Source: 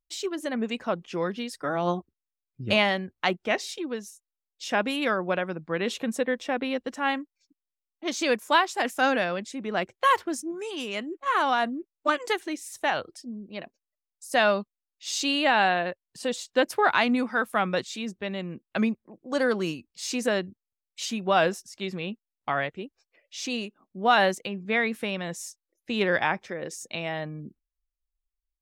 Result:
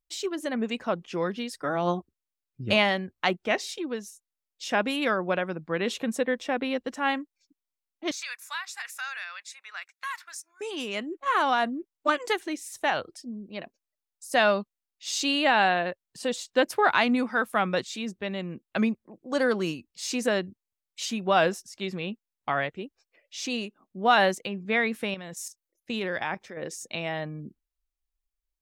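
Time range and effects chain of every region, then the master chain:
0:08.11–0:10.61: high-pass filter 1,300 Hz 24 dB per octave + notch filter 3,100 Hz, Q 6.6 + downward compressor 2 to 1, threshold −36 dBFS
0:25.14–0:26.57: output level in coarse steps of 10 dB + high-shelf EQ 8,400 Hz +6 dB
whole clip: no processing

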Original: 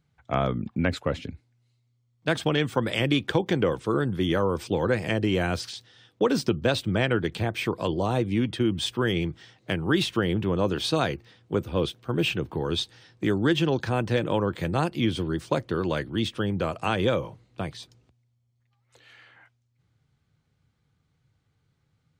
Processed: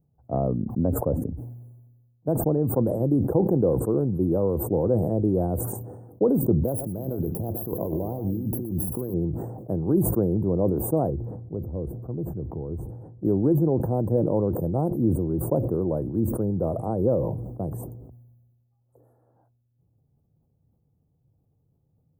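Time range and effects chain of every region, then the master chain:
0:06.64–0:09.14: compressor whose output falls as the input rises −31 dBFS + single-tap delay 119 ms −9.5 dB + bad sample-rate conversion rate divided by 3×, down none, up hold
0:11.10–0:13.25: low-pass filter 3,000 Hz 6 dB per octave + low-shelf EQ 130 Hz +11 dB + downward compressor 1.5 to 1, threshold −46 dBFS
whole clip: inverse Chebyshev band-stop filter 2,400–5,000 Hz, stop band 80 dB; parametric band 6,200 Hz +9 dB 1.8 octaves; level that may fall only so fast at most 40 dB per second; level +1.5 dB

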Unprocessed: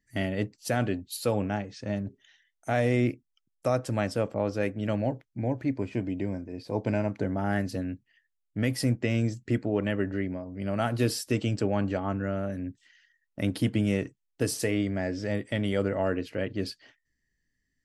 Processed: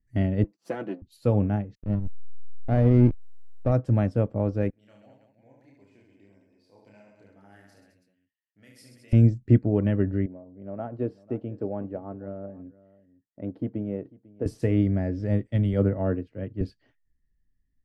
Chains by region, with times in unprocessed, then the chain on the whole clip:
0:00.44–0:01.02: gain on one half-wave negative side −7 dB + high-pass filter 230 Hz 24 dB per octave + comb filter 6 ms, depth 72%
0:01.75–0:03.72: low-pass filter 2,500 Hz + slack as between gear wheels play −26.5 dBFS
0:04.70–0:09.13: first difference + reverse bouncing-ball delay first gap 30 ms, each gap 1.4×, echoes 5, each echo −2 dB
0:10.26–0:14.46: resonant band-pass 580 Hz, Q 1 + single-tap delay 496 ms −18 dB
0:15.47–0:16.61: high-shelf EQ 8,300 Hz −4.5 dB + multiband upward and downward expander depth 100%
whole clip: spectral tilt −4 dB per octave; expander for the loud parts 1.5 to 1, over −32 dBFS

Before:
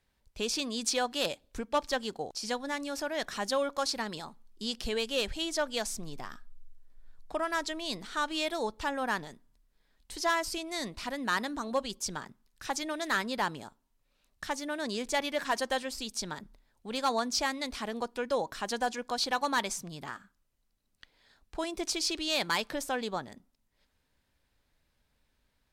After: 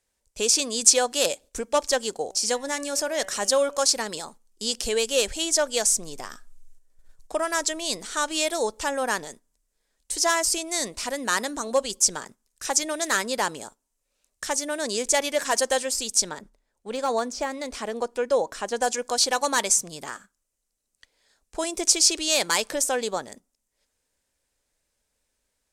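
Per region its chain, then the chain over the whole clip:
0:02.24–0:03.82: de-essing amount 35% + hum removal 191.7 Hz, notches 16
0:16.29–0:18.82: de-essing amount 95% + high-shelf EQ 4,200 Hz −10 dB
whole clip: parametric band 7,000 Hz +15 dB 2.5 octaves; noise gate −47 dBFS, range −8 dB; octave-band graphic EQ 125/500/4,000/8,000 Hz −4/+8/−7/+4 dB; level +1 dB

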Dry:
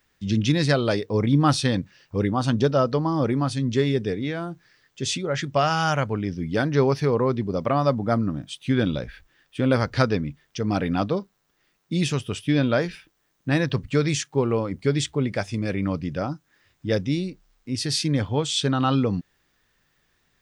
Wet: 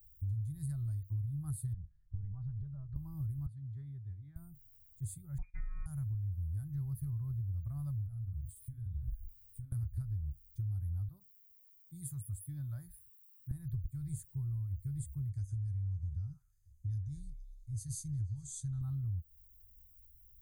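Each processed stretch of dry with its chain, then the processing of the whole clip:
0:01.73–0:02.96: downward compressor 4 to 1, threshold −26 dBFS + Gaussian smoothing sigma 2.9 samples + comb filter 5 ms, depth 61%
0:03.46–0:04.36: high-pass filter 440 Hz 6 dB per octave + high-frequency loss of the air 330 metres
0:05.38–0:05.86: leveller curve on the samples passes 3 + phases set to zero 188 Hz + voice inversion scrambler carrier 2,600 Hz
0:08.06–0:09.72: double-tracking delay 42 ms −4.5 dB + downward compressor 5 to 1, threshold −33 dBFS
0:11.08–0:13.51: high-pass filter 270 Hz 6 dB per octave + parametric band 2,500 Hz −4 dB 0.38 octaves
0:15.29–0:18.81: low-pass with resonance 6,200 Hz, resonance Q 12 + parametric band 600 Hz −8.5 dB 2.2 octaves + echo through a band-pass that steps 117 ms, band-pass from 1,300 Hz, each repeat 0.7 octaves, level −10.5 dB
whole clip: inverse Chebyshev band-stop filter 210–6,000 Hz, stop band 50 dB; downward compressor 6 to 1, threshold −48 dBFS; level +13 dB

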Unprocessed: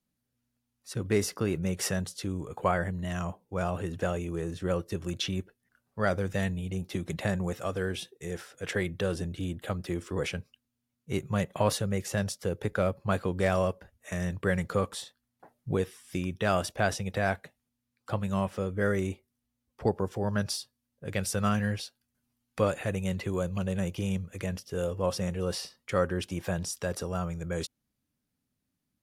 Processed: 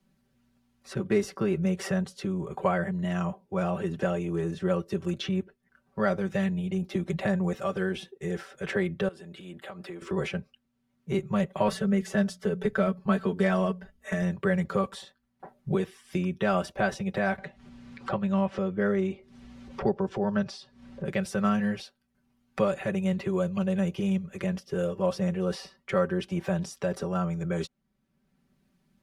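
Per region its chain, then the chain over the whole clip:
0:09.08–0:10.02: high-pass filter 610 Hz 6 dB per octave + notch filter 5,900 Hz, Q 6.6 + downward compressor, threshold −45 dBFS
0:11.67–0:14.22: mains-hum notches 60/120/180 Hz + comb filter 4.6 ms, depth 69%
0:17.38–0:21.05: upward compression, threshold −30 dBFS + high-frequency loss of the air 89 metres
whole clip: low-pass filter 2,500 Hz 6 dB per octave; comb filter 5.2 ms, depth 84%; multiband upward and downward compressor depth 40%

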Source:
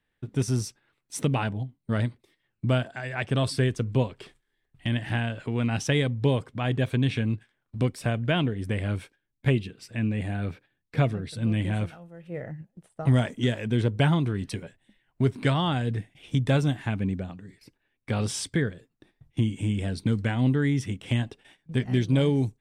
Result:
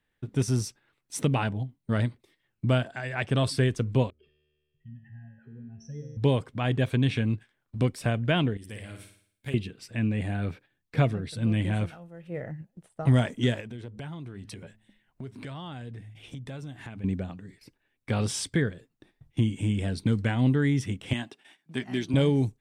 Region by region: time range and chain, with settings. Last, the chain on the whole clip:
0:04.10–0:06.17: expanding power law on the bin magnitudes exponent 2.6 + low-pass filter 6,100 Hz + tuned comb filter 75 Hz, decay 2 s, mix 90%
0:08.57–0:09.54: first-order pre-emphasis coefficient 0.8 + flutter between parallel walls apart 9.5 metres, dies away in 0.57 s
0:13.60–0:17.04: hum removal 106.9 Hz, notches 2 + downward compressor 4 to 1, threshold −39 dBFS
0:21.13–0:22.14: high-pass filter 260 Hz + parametric band 490 Hz −12.5 dB 0.34 octaves
whole clip: no processing

